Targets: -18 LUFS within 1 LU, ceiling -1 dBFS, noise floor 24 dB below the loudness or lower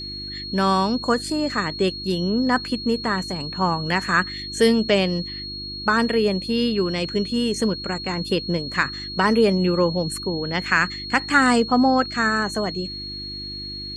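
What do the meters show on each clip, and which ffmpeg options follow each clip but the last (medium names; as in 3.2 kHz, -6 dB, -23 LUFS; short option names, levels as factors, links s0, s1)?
hum 50 Hz; highest harmonic 350 Hz; hum level -38 dBFS; steady tone 4.3 kHz; tone level -31 dBFS; loudness -22.0 LUFS; peak level -3.0 dBFS; loudness target -18.0 LUFS
-> -af "bandreject=f=50:t=h:w=4,bandreject=f=100:t=h:w=4,bandreject=f=150:t=h:w=4,bandreject=f=200:t=h:w=4,bandreject=f=250:t=h:w=4,bandreject=f=300:t=h:w=4,bandreject=f=350:t=h:w=4"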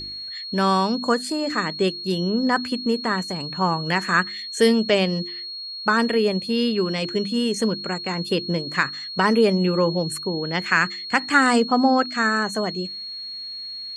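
hum not found; steady tone 4.3 kHz; tone level -31 dBFS
-> -af "bandreject=f=4300:w=30"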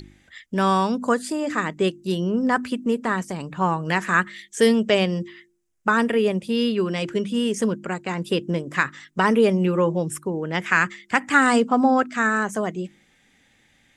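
steady tone not found; loudness -22.0 LUFS; peak level -3.0 dBFS; loudness target -18.0 LUFS
-> -af "volume=1.58,alimiter=limit=0.891:level=0:latency=1"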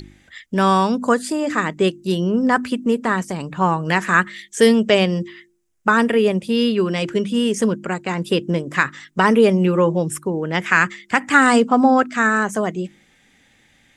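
loudness -18.5 LUFS; peak level -1.0 dBFS; noise floor -57 dBFS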